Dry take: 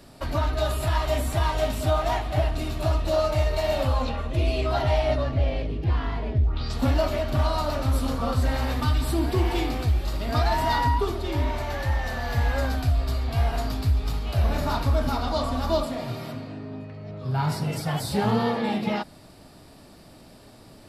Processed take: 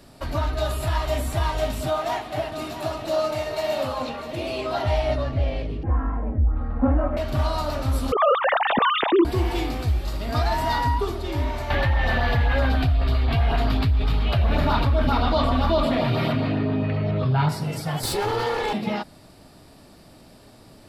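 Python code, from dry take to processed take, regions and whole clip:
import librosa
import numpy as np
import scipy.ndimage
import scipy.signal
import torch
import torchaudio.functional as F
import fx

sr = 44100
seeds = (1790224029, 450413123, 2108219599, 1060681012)

y = fx.chain(x, sr, fx.highpass(hz=180.0, slope=12),
    fx.echo_single(ms=648, db=-11.0), at=(1.87, 4.86))
y = fx.chain(y, sr, fx.cheby2_lowpass(hz=8100.0, order=4, stop_db=80),
    fx.comb(ms=3.8, depth=0.77), at=(5.83, 7.17))
y = fx.chain(y, sr, fx.sine_speech(),
    fx.env_flatten(amount_pct=50), at=(8.12, 9.25))
y = fx.chain(y, sr, fx.high_shelf_res(hz=4600.0, db=-12.0, q=1.5),
    fx.filter_lfo_notch(shape='saw_up', hz=7.6, low_hz=280.0, high_hz=2900.0, q=2.2),
    fx.env_flatten(amount_pct=70), at=(11.7, 17.49))
y = fx.chain(y, sr, fx.lower_of_two(delay_ms=2.3),
    fx.low_shelf(hz=350.0, db=-5.0),
    fx.env_flatten(amount_pct=70), at=(18.03, 18.73))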